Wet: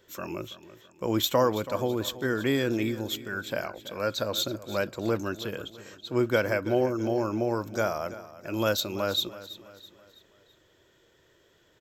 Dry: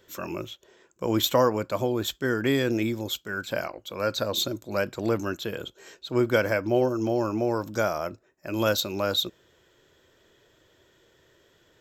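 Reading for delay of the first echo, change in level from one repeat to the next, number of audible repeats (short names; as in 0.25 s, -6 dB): 0.329 s, -7.0 dB, 3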